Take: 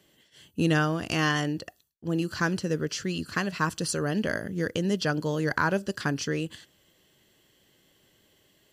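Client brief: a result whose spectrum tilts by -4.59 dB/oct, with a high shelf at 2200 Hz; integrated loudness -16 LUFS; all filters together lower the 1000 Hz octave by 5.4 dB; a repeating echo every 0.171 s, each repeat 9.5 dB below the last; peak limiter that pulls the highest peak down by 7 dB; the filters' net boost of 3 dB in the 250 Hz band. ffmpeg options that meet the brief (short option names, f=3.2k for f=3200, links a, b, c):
-af "equalizer=f=250:t=o:g=5,equalizer=f=1k:t=o:g=-9,highshelf=f=2.2k:g=6.5,alimiter=limit=-17.5dB:level=0:latency=1,aecho=1:1:171|342|513|684:0.335|0.111|0.0365|0.012,volume=12dB"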